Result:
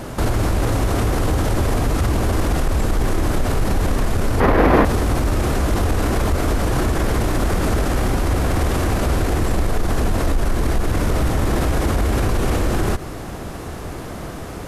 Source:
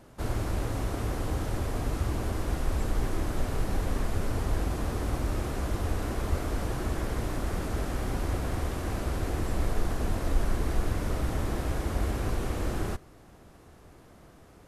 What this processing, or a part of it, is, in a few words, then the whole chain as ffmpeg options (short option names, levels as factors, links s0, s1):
loud club master: -filter_complex "[0:a]acompressor=threshold=0.0355:ratio=3,asoftclip=type=hard:threshold=0.0631,alimiter=level_in=44.7:limit=0.891:release=50:level=0:latency=1,asettb=1/sr,asplit=3[s0][s1][s2];[s0]atrim=end=4.404[s3];[s1]atrim=start=4.4:end=4.85,asetpts=PTS-STARTPTS,afade=t=in:d=0.004:c=qsin,afade=t=out:st=0.446:d=0.004:c=qsin,equalizer=f=250:t=o:w=1:g=7,equalizer=f=500:t=o:w=1:g=9,equalizer=f=1000:t=o:w=1:g=8,equalizer=f=2000:t=o:w=1:g=10,equalizer=f=8000:t=o:w=1:g=-12[s4];[s2]atrim=start=4.846[s5];[s3][s4]acrossfade=d=0.004:c1=hsin:c2=qsin[s6];[s6][s5]acrossfade=d=0.004:c1=qsin:c2=hsin,volume=0.316"